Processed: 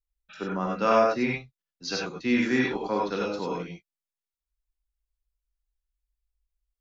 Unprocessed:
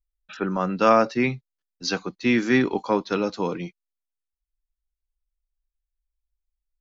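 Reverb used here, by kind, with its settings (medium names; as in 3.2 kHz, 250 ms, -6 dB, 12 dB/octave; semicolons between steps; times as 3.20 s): gated-style reverb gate 120 ms rising, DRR -2.5 dB; trim -7.5 dB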